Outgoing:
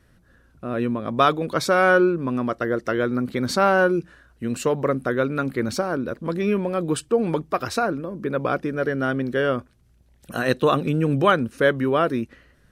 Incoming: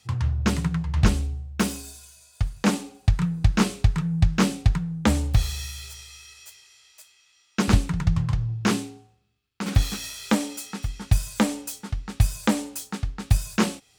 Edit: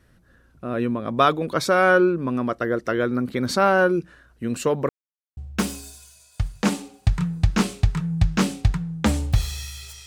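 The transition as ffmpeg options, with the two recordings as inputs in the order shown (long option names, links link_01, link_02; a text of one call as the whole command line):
ffmpeg -i cue0.wav -i cue1.wav -filter_complex "[0:a]apad=whole_dur=10.06,atrim=end=10.06,asplit=2[link_01][link_02];[link_01]atrim=end=4.89,asetpts=PTS-STARTPTS,afade=type=out:start_time=4.886:duration=0.004:curve=hsin[link_03];[link_02]atrim=start=4.89:end=5.37,asetpts=PTS-STARTPTS,volume=0[link_04];[1:a]atrim=start=1.38:end=6.07,asetpts=PTS-STARTPTS,afade=type=in:duration=0.004:curve=hsin[link_05];[link_03][link_04][link_05]concat=n=3:v=0:a=1" out.wav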